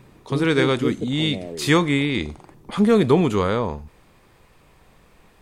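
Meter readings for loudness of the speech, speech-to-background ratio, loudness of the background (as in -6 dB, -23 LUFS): -21.0 LUFS, 9.0 dB, -30.0 LUFS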